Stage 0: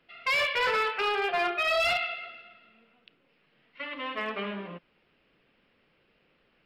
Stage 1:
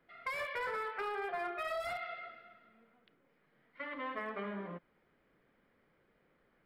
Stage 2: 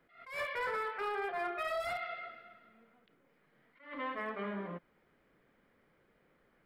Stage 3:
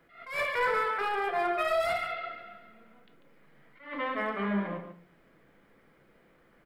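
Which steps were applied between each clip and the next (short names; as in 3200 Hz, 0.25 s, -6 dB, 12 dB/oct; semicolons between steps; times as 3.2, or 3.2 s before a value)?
band shelf 4100 Hz -9.5 dB; notch 2700 Hz, Q 7.8; compressor 5:1, threshold -33 dBFS, peak gain reduction 8 dB; gain -3 dB
attack slew limiter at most 130 dB/s; gain +2 dB
echo 0.143 s -10 dB; shoebox room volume 270 m³, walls furnished, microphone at 0.71 m; gain +6.5 dB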